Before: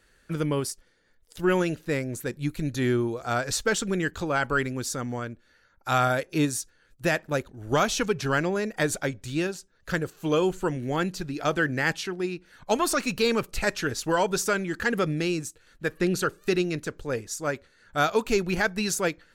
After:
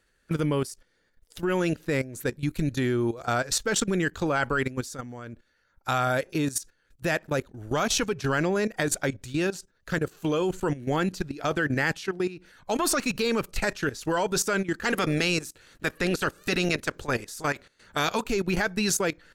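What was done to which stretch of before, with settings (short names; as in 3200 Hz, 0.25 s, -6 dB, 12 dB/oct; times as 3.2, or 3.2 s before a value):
14.83–18.19 spectral limiter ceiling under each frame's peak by 14 dB
whole clip: level quantiser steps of 15 dB; gain +5.5 dB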